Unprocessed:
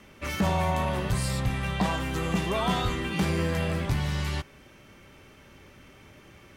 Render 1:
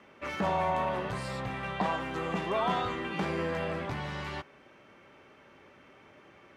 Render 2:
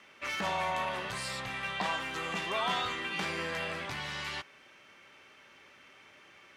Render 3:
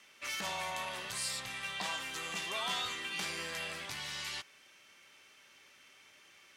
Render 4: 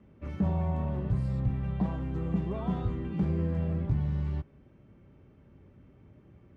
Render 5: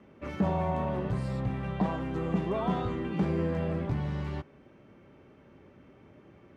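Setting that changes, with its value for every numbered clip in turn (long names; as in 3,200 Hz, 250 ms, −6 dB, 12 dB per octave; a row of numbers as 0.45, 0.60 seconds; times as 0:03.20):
resonant band-pass, frequency: 840, 2,200, 5,600, 110, 300 Hertz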